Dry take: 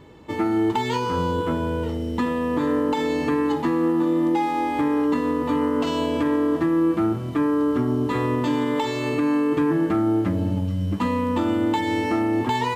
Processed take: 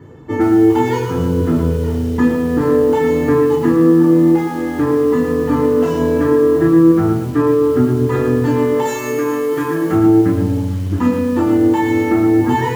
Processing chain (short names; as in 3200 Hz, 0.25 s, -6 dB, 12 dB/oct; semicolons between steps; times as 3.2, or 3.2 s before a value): 8.85–9.92 RIAA curve recording; reverb removal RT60 0.65 s; bell 4200 Hz -11.5 dB 1.5 oct; reverb RT60 0.55 s, pre-delay 3 ms, DRR -1.5 dB; lo-fi delay 0.115 s, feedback 35%, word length 5-bit, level -6.5 dB; gain -4 dB